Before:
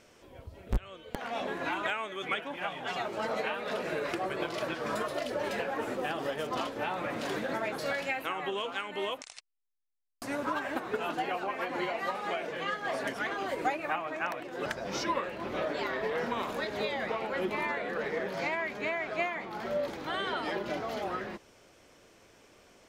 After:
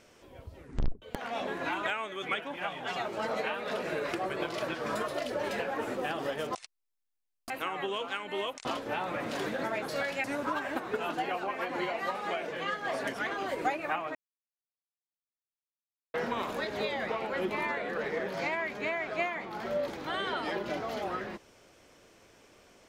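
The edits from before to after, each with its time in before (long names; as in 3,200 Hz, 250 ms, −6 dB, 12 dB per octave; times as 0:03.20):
0:00.55: tape stop 0.47 s
0:06.55–0:08.14: swap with 0:09.29–0:10.24
0:14.15–0:16.14: silence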